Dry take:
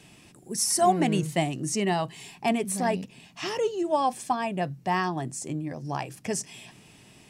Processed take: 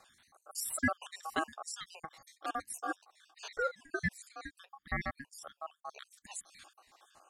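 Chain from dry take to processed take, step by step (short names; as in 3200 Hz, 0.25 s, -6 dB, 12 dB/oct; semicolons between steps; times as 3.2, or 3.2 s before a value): random spectral dropouts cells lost 70%; ring modulator 960 Hz; gain -4 dB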